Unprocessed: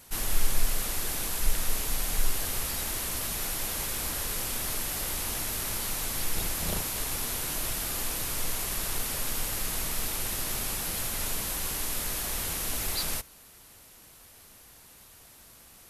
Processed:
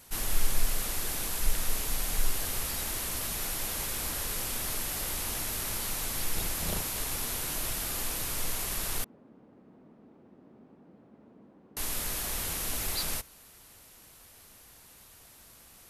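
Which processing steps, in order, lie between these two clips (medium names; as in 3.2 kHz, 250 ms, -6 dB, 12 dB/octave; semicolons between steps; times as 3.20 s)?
9.04–11.77 s: ladder band-pass 280 Hz, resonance 40%; trim -1.5 dB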